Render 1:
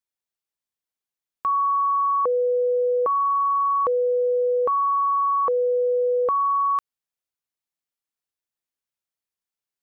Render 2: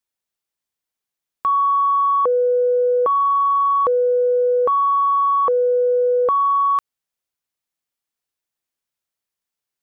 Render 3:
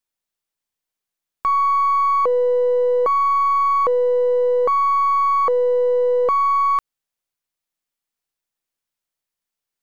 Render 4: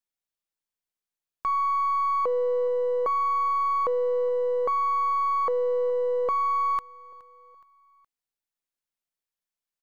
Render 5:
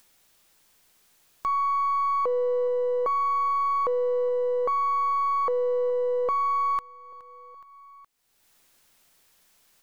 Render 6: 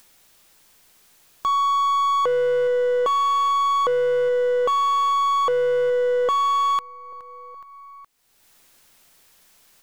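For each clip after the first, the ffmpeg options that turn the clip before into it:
-af "acontrast=66,volume=-2dB"
-af "aeval=exprs='if(lt(val(0),0),0.708*val(0),val(0))':c=same,volume=1dB"
-af "aecho=1:1:419|838|1257:0.075|0.0352|0.0166,volume=-7.5dB"
-af "acompressor=mode=upward:threshold=-39dB:ratio=2.5"
-af "volume=24.5dB,asoftclip=hard,volume=-24.5dB,volume=6.5dB"

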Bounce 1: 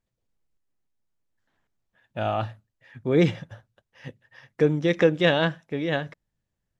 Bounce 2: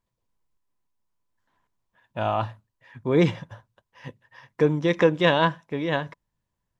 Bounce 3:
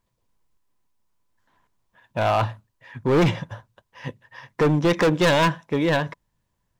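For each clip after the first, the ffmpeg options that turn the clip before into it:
-af "equalizer=f=1k:w=6.2:g=14"
-af "volume=21.5dB,asoftclip=hard,volume=-21.5dB,volume=6.5dB"

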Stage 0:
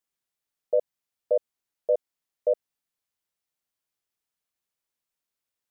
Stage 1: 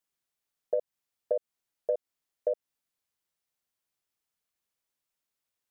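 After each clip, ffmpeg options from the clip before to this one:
-af "acompressor=threshold=-25dB:ratio=6"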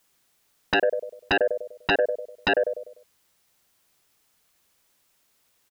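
-filter_complex "[0:a]asplit=2[a][b];[b]adelay=99,lowpass=f=840:p=1,volume=-9dB,asplit=2[c][d];[d]adelay=99,lowpass=f=840:p=1,volume=0.44,asplit=2[e][f];[f]adelay=99,lowpass=f=840:p=1,volume=0.44,asplit=2[g][h];[h]adelay=99,lowpass=f=840:p=1,volume=0.44,asplit=2[i][j];[j]adelay=99,lowpass=f=840:p=1,volume=0.44[k];[a][c][e][g][i][k]amix=inputs=6:normalize=0,aeval=exprs='0.15*sin(PI/2*5.62*val(0)/0.15)':c=same"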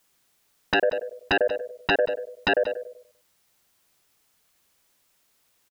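-af "aecho=1:1:184:0.15"

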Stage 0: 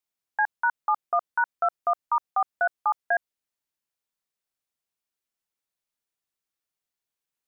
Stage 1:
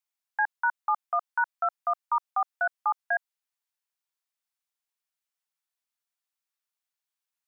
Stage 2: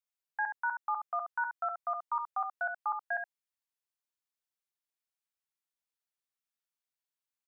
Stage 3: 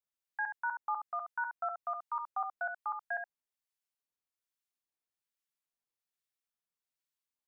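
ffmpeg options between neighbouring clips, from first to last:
-af "highpass=f=720:w=0.5412,highpass=f=720:w=1.3066,volume=-1.5dB"
-af "aecho=1:1:70:0.473,volume=-7dB"
-filter_complex "[0:a]acrossover=split=1300[a][b];[a]aeval=exprs='val(0)*(1-0.5/2+0.5/2*cos(2*PI*1.2*n/s))':c=same[c];[b]aeval=exprs='val(0)*(1-0.5/2-0.5/2*cos(2*PI*1.2*n/s))':c=same[d];[c][d]amix=inputs=2:normalize=0"

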